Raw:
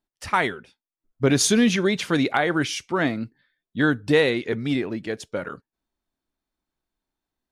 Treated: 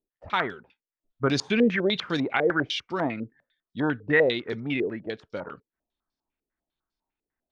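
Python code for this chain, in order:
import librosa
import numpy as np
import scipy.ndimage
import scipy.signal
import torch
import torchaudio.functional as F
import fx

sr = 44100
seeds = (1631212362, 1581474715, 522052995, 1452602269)

y = fx.filter_held_lowpass(x, sr, hz=10.0, low_hz=460.0, high_hz=5100.0)
y = y * librosa.db_to_amplitude(-6.0)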